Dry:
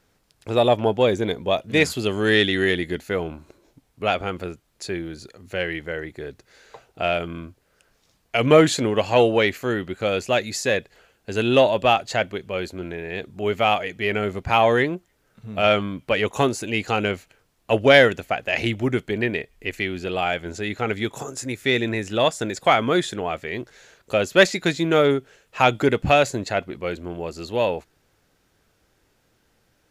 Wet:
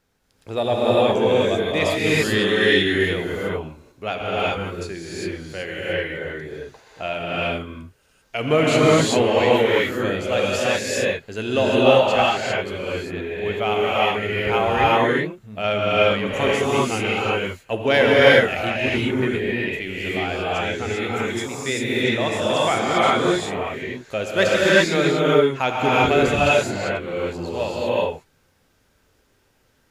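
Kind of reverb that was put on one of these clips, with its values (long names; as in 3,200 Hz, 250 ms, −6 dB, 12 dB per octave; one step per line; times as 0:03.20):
reverb whose tail is shaped and stops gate 420 ms rising, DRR −7 dB
level −5.5 dB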